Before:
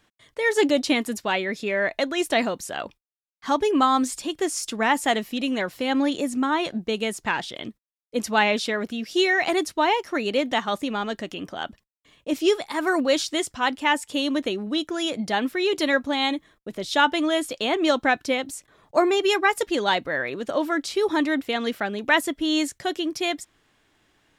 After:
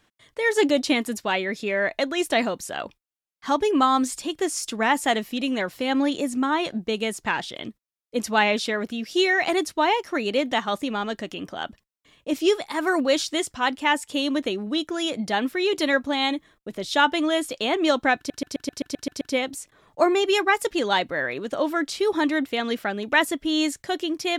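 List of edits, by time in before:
0:18.17: stutter 0.13 s, 9 plays

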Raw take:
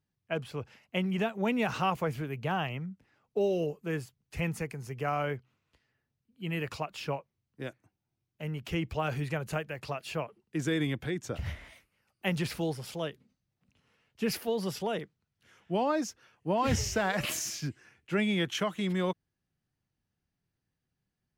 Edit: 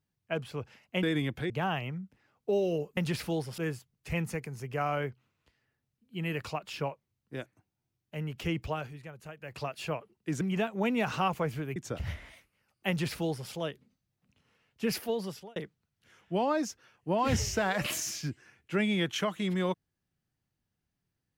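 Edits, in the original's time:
0:01.03–0:02.38: swap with 0:10.68–0:11.15
0:08.93–0:09.86: duck −12.5 dB, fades 0.24 s
0:12.28–0:12.89: duplicate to 0:03.85
0:14.47–0:14.95: fade out linear

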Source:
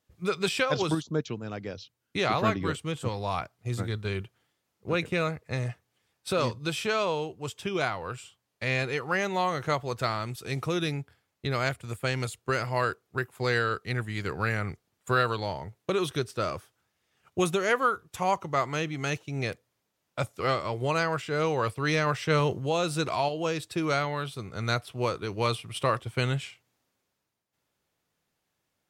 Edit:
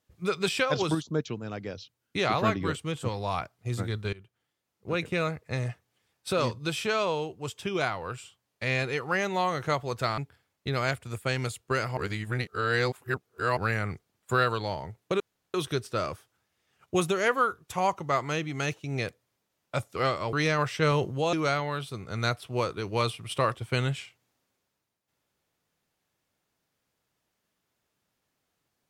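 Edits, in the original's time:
0:04.13–0:05.54: fade in equal-power, from −20 dB
0:10.18–0:10.96: remove
0:12.75–0:14.35: reverse
0:15.98: splice in room tone 0.34 s
0:20.77–0:21.81: remove
0:22.81–0:23.78: remove

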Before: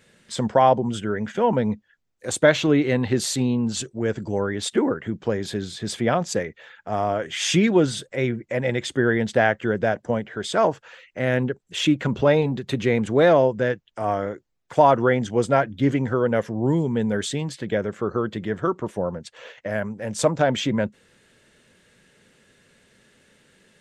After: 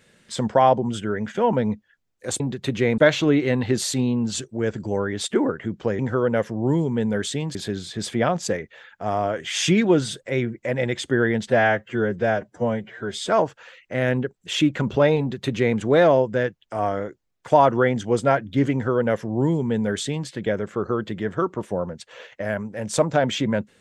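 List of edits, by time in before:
0:09.33–0:10.54: time-stretch 1.5×
0:12.45–0:13.03: duplicate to 0:02.40
0:15.98–0:17.54: duplicate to 0:05.41

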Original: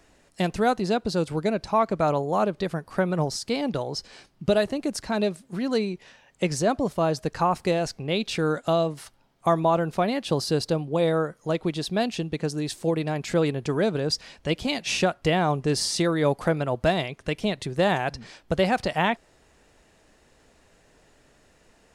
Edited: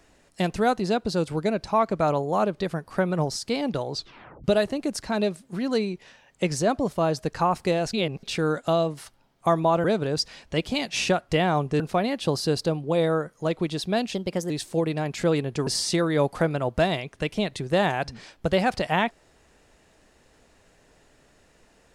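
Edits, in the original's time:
0:03.92: tape stop 0.52 s
0:07.93–0:08.23: reverse
0:12.18–0:12.60: play speed 117%
0:13.77–0:15.73: move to 0:09.84

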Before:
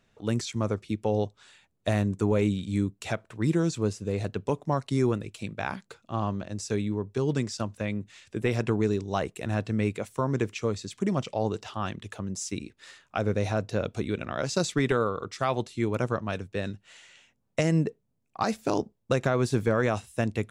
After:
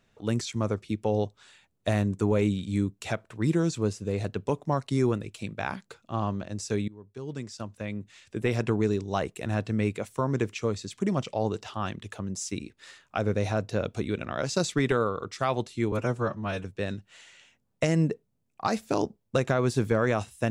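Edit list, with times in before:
0:06.88–0:08.51: fade in, from −21 dB
0:15.92–0:16.40: time-stretch 1.5×

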